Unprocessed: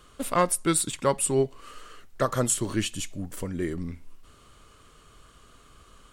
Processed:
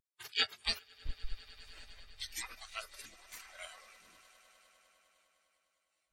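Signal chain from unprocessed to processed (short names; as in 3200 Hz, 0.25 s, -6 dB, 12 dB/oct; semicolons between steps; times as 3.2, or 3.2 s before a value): spectral gate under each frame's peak -30 dB weak; resonator 110 Hz, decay 0.25 s, harmonics all, mix 30%; 0.79–1.61 Schmitt trigger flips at -39 dBFS; on a send: swelling echo 0.101 s, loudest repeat 8, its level -13 dB; on the sum: spectral expander 2.5:1; gain +14.5 dB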